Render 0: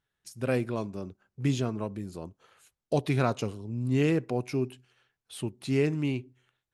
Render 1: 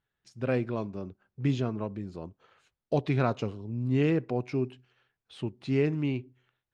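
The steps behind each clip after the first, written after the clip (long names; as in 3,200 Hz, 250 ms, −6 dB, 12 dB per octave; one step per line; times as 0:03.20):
high-frequency loss of the air 150 metres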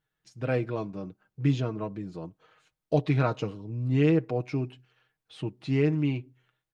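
comb filter 6.4 ms, depth 56%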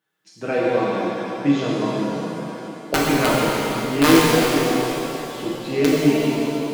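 high-pass filter 180 Hz 24 dB per octave
wrap-around overflow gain 15.5 dB
reverb with rising layers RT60 2.9 s, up +7 semitones, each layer −8 dB, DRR −6 dB
level +4 dB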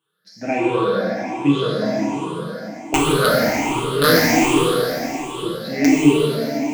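rippled gain that drifts along the octave scale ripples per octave 0.66, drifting +1.3 Hz, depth 18 dB
level −1.5 dB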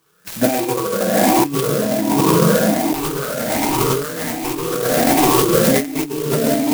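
on a send at −22 dB: convolution reverb RT60 1.5 s, pre-delay 42 ms
on the sum: compressor whose output falls as the input rises −27 dBFS, ratio −1
converter with an unsteady clock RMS 0.083 ms
level +8.5 dB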